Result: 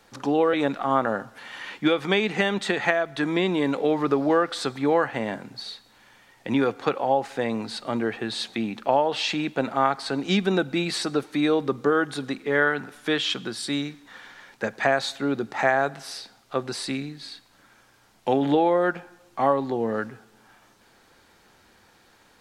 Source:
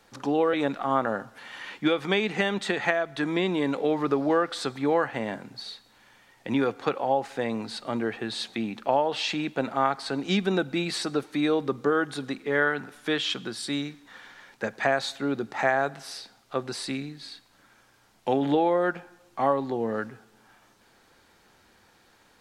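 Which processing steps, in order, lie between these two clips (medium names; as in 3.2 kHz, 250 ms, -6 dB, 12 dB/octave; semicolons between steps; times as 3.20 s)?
2.70–4.76 s: crackle 32 per s -51 dBFS; trim +2.5 dB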